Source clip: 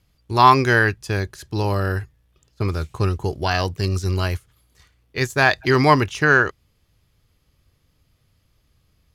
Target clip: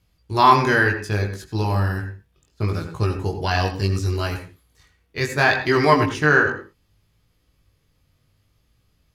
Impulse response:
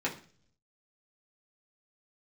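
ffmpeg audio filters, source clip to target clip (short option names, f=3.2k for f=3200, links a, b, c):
-filter_complex "[0:a]flanger=delay=18:depth=3.1:speed=0.68,asplit=2[a][b];[1:a]atrim=start_sample=2205,atrim=end_sample=6615,adelay=82[c];[b][c]afir=irnorm=-1:irlink=0,volume=-14.5dB[d];[a][d]amix=inputs=2:normalize=0,volume=1.5dB"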